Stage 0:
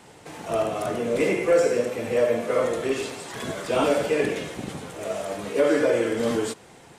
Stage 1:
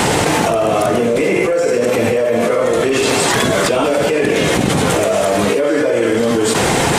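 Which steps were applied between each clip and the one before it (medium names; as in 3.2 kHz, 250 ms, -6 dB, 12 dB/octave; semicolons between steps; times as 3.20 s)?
level flattener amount 100%; trim +1 dB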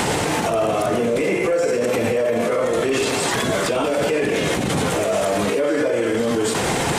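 peak limiter -12 dBFS, peak gain reduction 10 dB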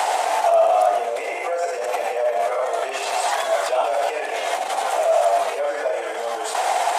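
ladder high-pass 660 Hz, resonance 70%; trim +7 dB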